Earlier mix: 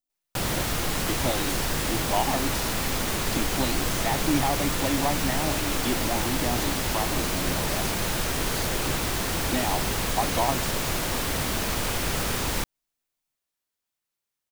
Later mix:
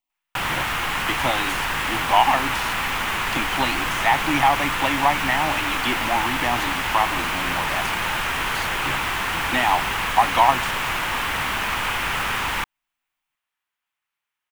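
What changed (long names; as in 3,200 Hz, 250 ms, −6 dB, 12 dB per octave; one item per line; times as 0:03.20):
background −4.5 dB
master: add flat-topped bell 1,600 Hz +13.5 dB 2.3 octaves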